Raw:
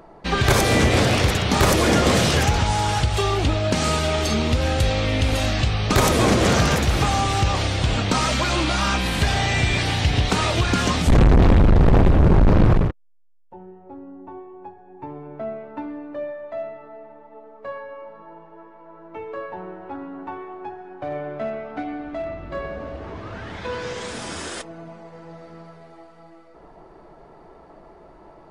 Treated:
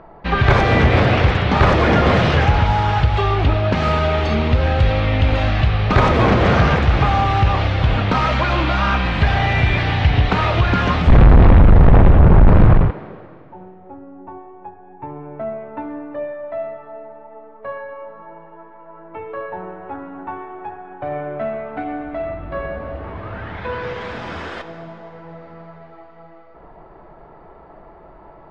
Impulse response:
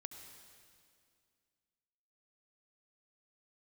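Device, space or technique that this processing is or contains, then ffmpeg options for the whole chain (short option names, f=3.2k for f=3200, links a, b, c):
filtered reverb send: -filter_complex "[0:a]lowpass=2.3k,lowpass=7.8k,asplit=2[a][b];[b]highpass=450,lowpass=4.8k[c];[1:a]atrim=start_sample=2205[d];[c][d]afir=irnorm=-1:irlink=0,volume=5.5dB[e];[a][e]amix=inputs=2:normalize=0,bass=f=250:g=7,treble=f=4k:g=5,volume=-1dB"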